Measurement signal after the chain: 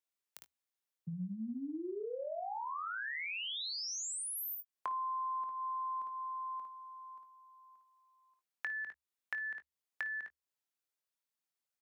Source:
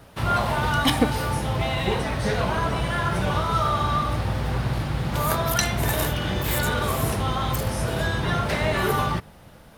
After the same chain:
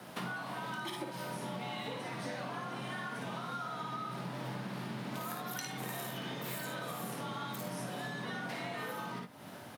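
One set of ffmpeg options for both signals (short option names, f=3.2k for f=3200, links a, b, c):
-filter_complex "[0:a]lowshelf=f=180:g=-6.5,afreqshift=72,aecho=1:1:55|72:0.596|0.188,acompressor=threshold=-38dB:ratio=10,asplit=2[a][b];[b]adelay=22,volume=-13.5dB[c];[a][c]amix=inputs=2:normalize=0"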